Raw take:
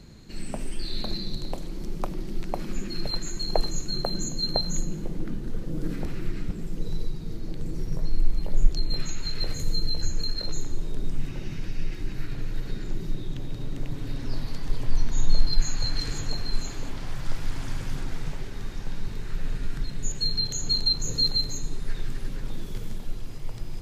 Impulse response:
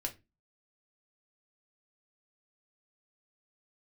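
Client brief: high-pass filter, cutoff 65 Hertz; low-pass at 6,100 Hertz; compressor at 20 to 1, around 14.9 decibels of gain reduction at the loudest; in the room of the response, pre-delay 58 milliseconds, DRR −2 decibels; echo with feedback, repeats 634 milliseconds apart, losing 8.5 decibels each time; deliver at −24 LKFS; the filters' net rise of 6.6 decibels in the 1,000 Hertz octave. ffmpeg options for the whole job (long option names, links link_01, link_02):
-filter_complex "[0:a]highpass=65,lowpass=6100,equalizer=frequency=1000:width_type=o:gain=9,acompressor=threshold=-33dB:ratio=20,aecho=1:1:634|1268|1902|2536:0.376|0.143|0.0543|0.0206,asplit=2[link_01][link_02];[1:a]atrim=start_sample=2205,adelay=58[link_03];[link_02][link_03]afir=irnorm=-1:irlink=0,volume=1.5dB[link_04];[link_01][link_04]amix=inputs=2:normalize=0,volume=9.5dB"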